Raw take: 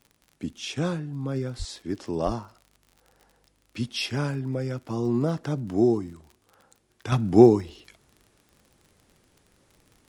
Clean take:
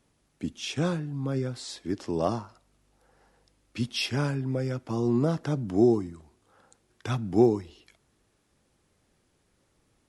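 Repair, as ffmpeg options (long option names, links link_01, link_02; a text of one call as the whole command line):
ffmpeg -i in.wav -filter_complex "[0:a]adeclick=threshold=4,asplit=3[link_01][link_02][link_03];[link_01]afade=type=out:start_time=1.58:duration=0.02[link_04];[link_02]highpass=frequency=140:width=0.5412,highpass=frequency=140:width=1.3066,afade=type=in:start_time=1.58:duration=0.02,afade=type=out:start_time=1.7:duration=0.02[link_05];[link_03]afade=type=in:start_time=1.7:duration=0.02[link_06];[link_04][link_05][link_06]amix=inputs=3:normalize=0,asplit=3[link_07][link_08][link_09];[link_07]afade=type=out:start_time=2.25:duration=0.02[link_10];[link_08]highpass=frequency=140:width=0.5412,highpass=frequency=140:width=1.3066,afade=type=in:start_time=2.25:duration=0.02,afade=type=out:start_time=2.37:duration=0.02[link_11];[link_09]afade=type=in:start_time=2.37:duration=0.02[link_12];[link_10][link_11][link_12]amix=inputs=3:normalize=0,asetnsamples=nb_out_samples=441:pad=0,asendcmd='7.12 volume volume -6.5dB',volume=0dB" out.wav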